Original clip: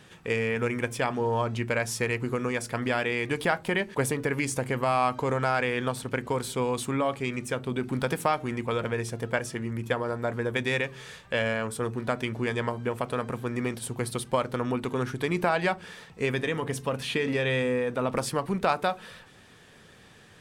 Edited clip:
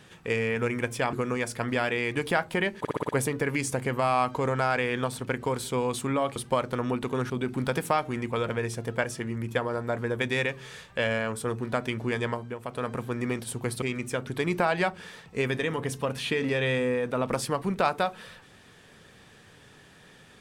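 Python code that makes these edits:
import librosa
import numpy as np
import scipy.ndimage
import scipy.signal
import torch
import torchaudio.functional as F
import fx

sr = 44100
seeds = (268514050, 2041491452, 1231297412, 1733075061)

y = fx.edit(x, sr, fx.cut(start_s=1.13, length_s=1.14),
    fx.stutter(start_s=3.93, slice_s=0.06, count=6),
    fx.swap(start_s=7.2, length_s=0.45, other_s=14.17, other_length_s=0.94),
    fx.fade_down_up(start_s=12.61, length_s=0.65, db=-9.0, fade_s=0.32), tone=tone)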